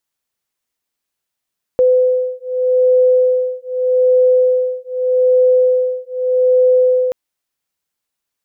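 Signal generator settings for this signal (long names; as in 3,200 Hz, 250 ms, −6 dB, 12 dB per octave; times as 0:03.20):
two tones that beat 506 Hz, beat 0.82 Hz, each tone −13.5 dBFS 5.33 s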